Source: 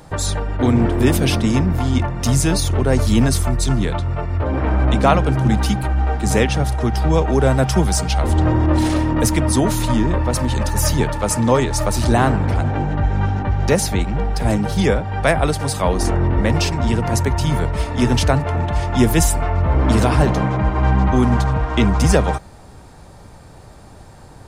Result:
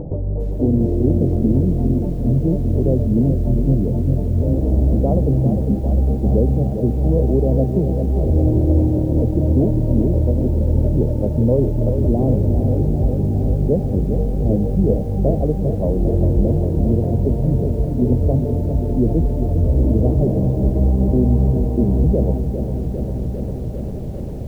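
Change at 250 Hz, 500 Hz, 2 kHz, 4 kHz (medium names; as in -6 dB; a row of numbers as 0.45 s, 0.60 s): +1.0 dB, -0.5 dB, under -30 dB, under -25 dB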